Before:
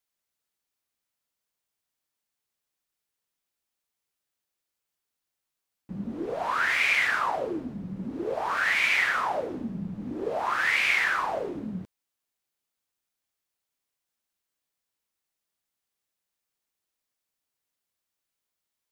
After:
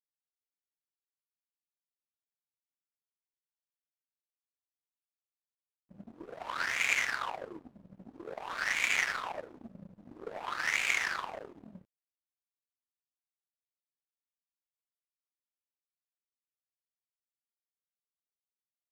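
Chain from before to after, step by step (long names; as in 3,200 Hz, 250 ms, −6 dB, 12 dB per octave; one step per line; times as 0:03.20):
power curve on the samples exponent 2
level +1 dB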